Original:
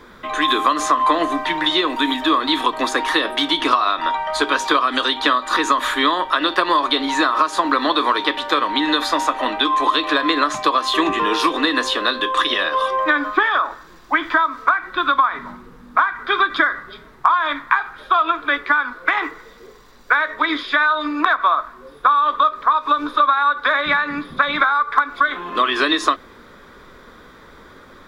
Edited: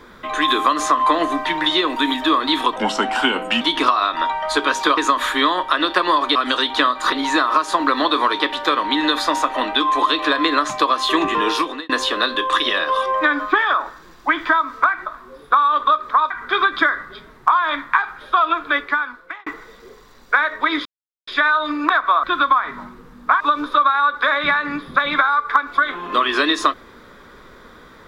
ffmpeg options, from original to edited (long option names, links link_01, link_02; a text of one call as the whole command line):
ffmpeg -i in.wav -filter_complex "[0:a]asplit=13[link_01][link_02][link_03][link_04][link_05][link_06][link_07][link_08][link_09][link_10][link_11][link_12][link_13];[link_01]atrim=end=2.764[link_14];[link_02]atrim=start=2.76:end=3.46,asetpts=PTS-STARTPTS,asetrate=36162,aresample=44100,atrim=end_sample=37646,asetpts=PTS-STARTPTS[link_15];[link_03]atrim=start=3.456:end=4.822[link_16];[link_04]atrim=start=5.588:end=6.972[link_17];[link_05]atrim=start=4.818:end=5.592[link_18];[link_06]atrim=start=6.968:end=11.74,asetpts=PTS-STARTPTS,afade=type=out:start_time=4.382:duration=0.39[link_19];[link_07]atrim=start=11.74:end=14.912,asetpts=PTS-STARTPTS,afade=type=in:duration=0.004:curve=hsin[link_20];[link_08]atrim=start=21.588:end=22.832[link_21];[link_09]atrim=start=16.078:end=19.24,asetpts=PTS-STARTPTS,afade=type=out:start_time=2.442:duration=0.72[link_22];[link_10]atrim=start=19.24:end=20.63,asetpts=PTS-STARTPTS,afade=type=in:duration=0.004:curve=hsin,afade=type=out:start_time=1.386:duration=0.004:curve=hsin,apad=pad_dur=0.42[link_23];[link_11]atrim=start=20.63:end=21.592,asetpts=PTS-STARTPTS,afade=type=in:duration=0.004:curve=hsin[link_24];[link_12]atrim=start=14.908:end=16.082[link_25];[link_13]atrim=start=22.828[link_26];[link_14][link_15]acrossfade=duration=0.004:curve1=hsin:curve2=hsin[link_27];[link_27][link_16]acrossfade=duration=0.004:curve1=hsin:curve2=hsin[link_28];[link_28][link_17]acrossfade=duration=0.004:curve1=hsin:curve2=hsin[link_29];[link_29][link_18]acrossfade=duration=0.004:curve1=hsin:curve2=hsin[link_30];[link_19][link_20]concat=n=2:v=0:a=1[link_31];[link_30][link_31]acrossfade=duration=0.004:curve1=hsin:curve2=hsin[link_32];[link_32][link_21]acrossfade=duration=0.004:curve1=hsin:curve2=hsin[link_33];[link_22][link_23][link_24]concat=n=3:v=0:a=1[link_34];[link_33][link_34]acrossfade=duration=0.004:curve1=hsin:curve2=hsin[link_35];[link_35][link_25]acrossfade=duration=0.004:curve1=hsin:curve2=hsin[link_36];[link_36][link_26]acrossfade=duration=0.004:curve1=hsin:curve2=hsin" out.wav